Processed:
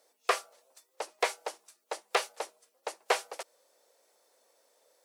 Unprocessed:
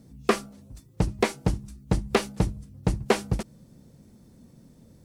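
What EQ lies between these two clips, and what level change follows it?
steep high-pass 500 Hz 36 dB/octave; -1.5 dB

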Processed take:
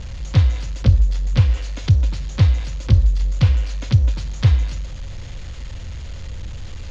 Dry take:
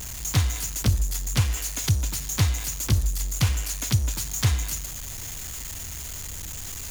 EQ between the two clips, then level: low-pass 4.6 kHz 24 dB/octave; bass shelf 200 Hz +11.5 dB; peaking EQ 530 Hz +11 dB 0.22 oct; -1.0 dB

